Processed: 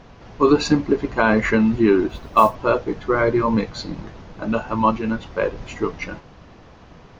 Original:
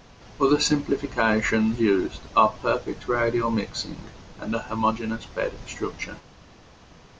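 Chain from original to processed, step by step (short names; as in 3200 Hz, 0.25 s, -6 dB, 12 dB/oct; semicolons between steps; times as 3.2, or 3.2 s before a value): LPF 1900 Hz 6 dB/oct; 2.09–2.55 modulation noise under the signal 29 dB; gain +5.5 dB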